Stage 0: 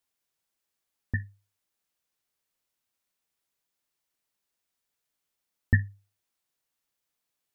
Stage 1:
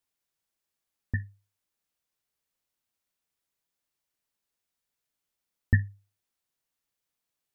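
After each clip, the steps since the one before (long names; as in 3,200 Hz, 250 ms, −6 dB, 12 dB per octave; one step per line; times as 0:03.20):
low-shelf EQ 200 Hz +3.5 dB
level −2.5 dB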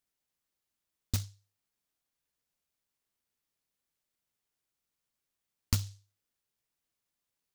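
downward compressor 6 to 1, threshold −24 dBFS, peak gain reduction 8 dB
short delay modulated by noise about 5,100 Hz, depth 0.42 ms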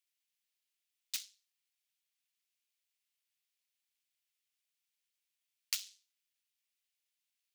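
high-pass with resonance 2,500 Hz, resonance Q 1.6
level −1.5 dB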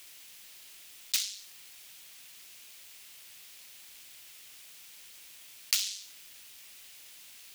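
envelope flattener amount 50%
level +7.5 dB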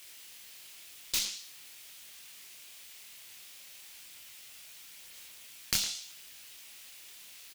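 one-sided soft clipper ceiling −23.5 dBFS
multi-voice chorus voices 2, 0.48 Hz, delay 25 ms, depth 4.1 ms
far-end echo of a speakerphone 110 ms, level −10 dB
level +4 dB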